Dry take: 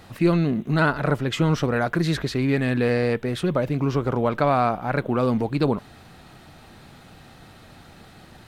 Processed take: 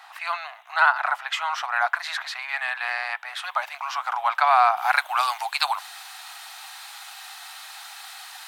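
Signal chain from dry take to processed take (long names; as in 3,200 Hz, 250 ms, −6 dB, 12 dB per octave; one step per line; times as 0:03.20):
Butterworth high-pass 740 Hz 72 dB per octave
high-shelf EQ 3,300 Hz −10.5 dB, from 0:03.43 −2.5 dB, from 0:04.77 +11 dB
level +7 dB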